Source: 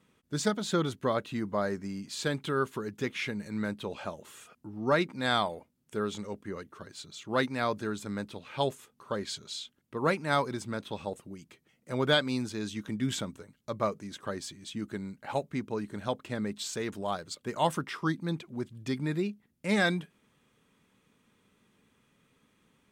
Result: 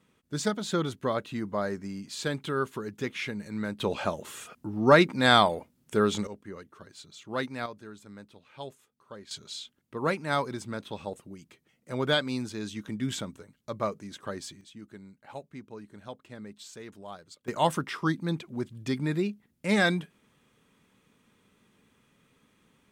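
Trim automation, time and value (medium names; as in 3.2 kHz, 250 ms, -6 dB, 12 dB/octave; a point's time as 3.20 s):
0 dB
from 3.80 s +8 dB
from 6.27 s -3.5 dB
from 7.66 s -11.5 dB
from 9.31 s -0.5 dB
from 14.61 s -10 dB
from 17.48 s +2.5 dB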